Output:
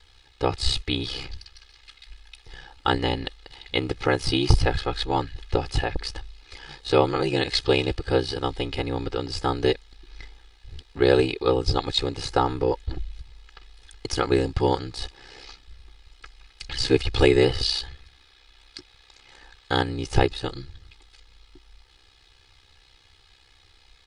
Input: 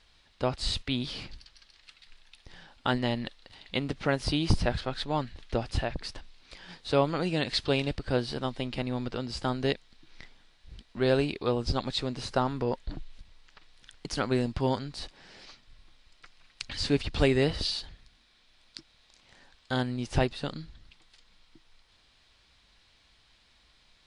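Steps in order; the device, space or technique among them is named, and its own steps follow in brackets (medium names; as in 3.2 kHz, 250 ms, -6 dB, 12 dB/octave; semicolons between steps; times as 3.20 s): ring-modulated robot voice (ring modulator 32 Hz; comb 2.4 ms, depth 74%); 17.69–19.84 s: peaking EQ 1.6 kHz +3.5 dB 2.4 oct; trim +7 dB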